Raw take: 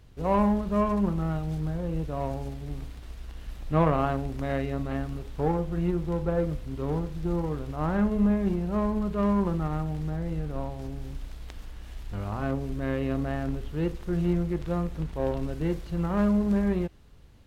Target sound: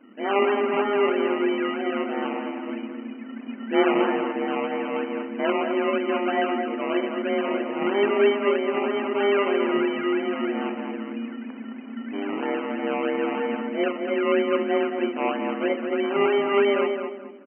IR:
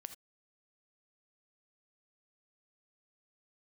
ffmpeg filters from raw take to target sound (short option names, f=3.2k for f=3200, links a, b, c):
-filter_complex "[0:a]acrossover=split=630[a][b];[b]asoftclip=type=tanh:threshold=-34dB[c];[a][c]amix=inputs=2:normalize=0,asplit=2[d][e];[e]adelay=25,volume=-12dB[f];[d][f]amix=inputs=2:normalize=0[g];[1:a]atrim=start_sample=2205[h];[g][h]afir=irnorm=-1:irlink=0,afreqshift=200,aresample=16000,acrusher=samples=8:mix=1:aa=0.000001:lfo=1:lforange=4.8:lforate=3.1,aresample=44100,asplit=2[i][j];[j]adelay=215,lowpass=f=2k:p=1,volume=-5dB,asplit=2[k][l];[l]adelay=215,lowpass=f=2k:p=1,volume=0.32,asplit=2[m][n];[n]adelay=215,lowpass=f=2k:p=1,volume=0.32,asplit=2[o][p];[p]adelay=215,lowpass=f=2k:p=1,volume=0.32[q];[i][k][m][o][q]amix=inputs=5:normalize=0,afftfilt=real='re*between(b*sr/4096,160,3100)':imag='im*between(b*sr/4096,160,3100)':win_size=4096:overlap=0.75,volume=7.5dB"